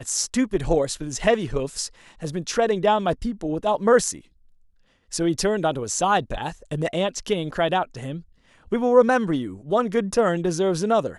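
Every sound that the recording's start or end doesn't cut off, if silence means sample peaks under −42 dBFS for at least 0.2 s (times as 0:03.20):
0:05.11–0:08.22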